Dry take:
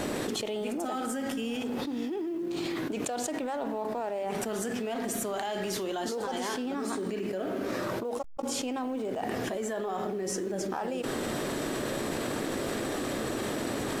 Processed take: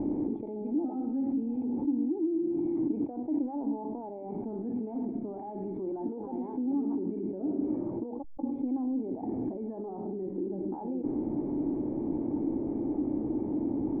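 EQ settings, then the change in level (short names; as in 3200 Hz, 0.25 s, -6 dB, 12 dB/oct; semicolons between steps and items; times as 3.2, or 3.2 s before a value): vocal tract filter u; low shelf 130 Hz +9.5 dB; +6.5 dB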